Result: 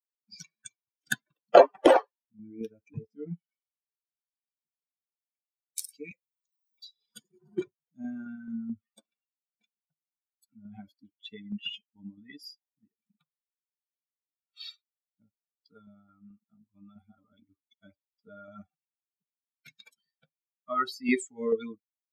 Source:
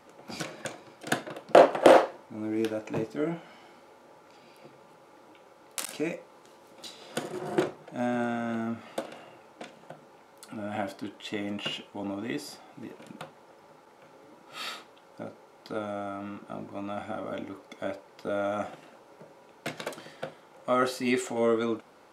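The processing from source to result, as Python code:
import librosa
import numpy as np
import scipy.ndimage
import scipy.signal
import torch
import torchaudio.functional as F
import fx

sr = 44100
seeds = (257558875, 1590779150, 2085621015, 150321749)

y = fx.bin_expand(x, sr, power=3.0)
y = fx.tremolo_shape(y, sr, shape='saw_down', hz=4.6, depth_pct=40)
y = fx.band_squash(y, sr, depth_pct=100, at=(6.11, 7.3))
y = y * 10.0 ** (6.0 / 20.0)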